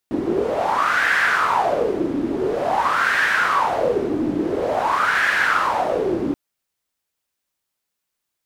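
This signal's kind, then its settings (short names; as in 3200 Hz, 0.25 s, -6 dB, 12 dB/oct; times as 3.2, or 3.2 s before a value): wind-like swept noise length 6.23 s, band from 300 Hz, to 1700 Hz, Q 6, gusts 3, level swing 4 dB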